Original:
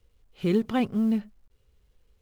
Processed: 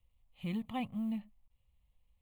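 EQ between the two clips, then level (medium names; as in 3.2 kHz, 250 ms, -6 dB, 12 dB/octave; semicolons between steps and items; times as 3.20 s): static phaser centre 1.5 kHz, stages 6; -8.0 dB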